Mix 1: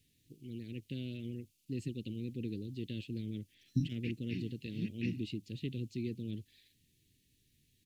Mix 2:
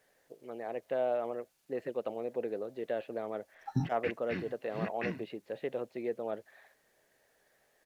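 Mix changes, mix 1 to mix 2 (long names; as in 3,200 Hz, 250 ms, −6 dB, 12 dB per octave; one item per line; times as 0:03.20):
first voice: add band-pass filter 340–2,300 Hz
master: remove Chebyshev band-stop filter 310–2,700 Hz, order 3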